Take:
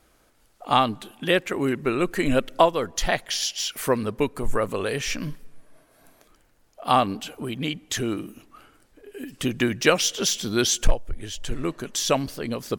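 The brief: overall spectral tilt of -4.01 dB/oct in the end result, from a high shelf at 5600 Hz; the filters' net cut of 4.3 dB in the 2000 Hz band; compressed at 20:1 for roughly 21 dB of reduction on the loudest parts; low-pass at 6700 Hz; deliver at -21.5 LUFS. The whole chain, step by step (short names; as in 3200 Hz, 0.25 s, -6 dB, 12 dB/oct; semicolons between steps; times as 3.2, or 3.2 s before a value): LPF 6700 Hz; bell 2000 Hz -4.5 dB; high shelf 5600 Hz -8 dB; compressor 20:1, threshold -30 dBFS; gain +14.5 dB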